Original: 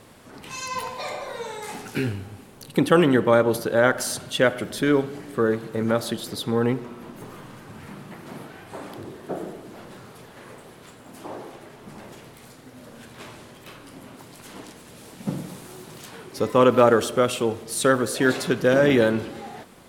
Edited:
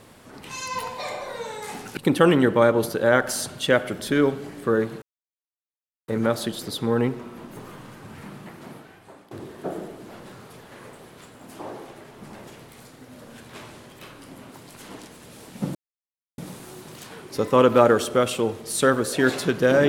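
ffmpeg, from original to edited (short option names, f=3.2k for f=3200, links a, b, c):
-filter_complex "[0:a]asplit=5[a][b][c][d][e];[a]atrim=end=1.972[f];[b]atrim=start=2.678:end=5.73,asetpts=PTS-STARTPTS,afade=t=out:st=3.048:d=0.004:c=hsin,apad=pad_dur=1.06[g];[c]atrim=start=5.73:end=8.96,asetpts=PTS-STARTPTS,afade=t=in:d=0.004:c=hsin,afade=t=out:st=2.32:d=0.91:silence=0.133352[h];[d]atrim=start=8.96:end=15.4,asetpts=PTS-STARTPTS,afade=t=in:d=0.004:c=hsin:silence=0.133352,afade=t=out:st=6.436:d=0.004:c=hsin,apad=pad_dur=0.63[i];[e]atrim=start=15.4,asetpts=PTS-STARTPTS,afade=t=in:d=0.004:c=hsin[j];[g][h][i][j]concat=n=4:v=0:a=1[k];[f][k]acrossfade=d=0.004:c1=hsin:c2=hsin"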